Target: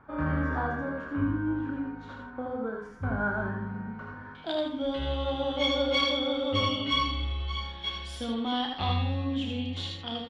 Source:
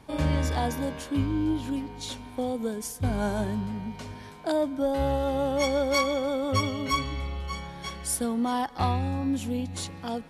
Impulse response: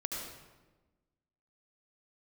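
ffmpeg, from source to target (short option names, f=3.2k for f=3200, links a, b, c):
-filter_complex "[0:a]asetnsamples=n=441:p=0,asendcmd='4.35 lowpass f 3300',lowpass=f=1.4k:t=q:w=5.8,aecho=1:1:31|77:0.473|0.447[a];[1:a]atrim=start_sample=2205,atrim=end_sample=3969,asetrate=41454,aresample=44100[b];[a][b]afir=irnorm=-1:irlink=0,volume=-5.5dB"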